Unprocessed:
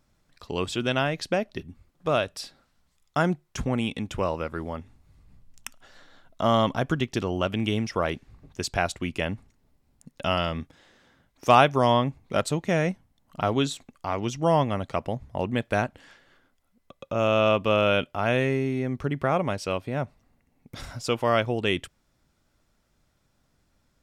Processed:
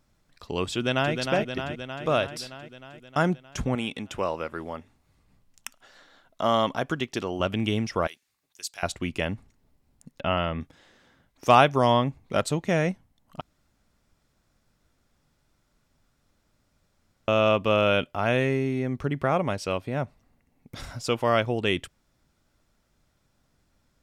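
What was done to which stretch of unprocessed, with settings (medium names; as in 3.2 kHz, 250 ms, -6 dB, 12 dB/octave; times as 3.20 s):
0.73–1.13 s: echo throw 310 ms, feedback 70%, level -5.5 dB
3.75–7.40 s: bass shelf 160 Hz -12 dB
8.07–8.83 s: differentiator
10.21–10.61 s: low-pass 2.9 kHz 24 dB/octave
13.41–17.28 s: room tone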